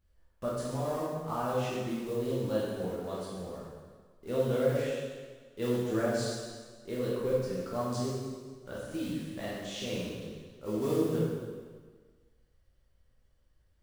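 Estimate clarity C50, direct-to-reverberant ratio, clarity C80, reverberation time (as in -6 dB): -1.5 dB, -8.0 dB, 0.5 dB, 1.5 s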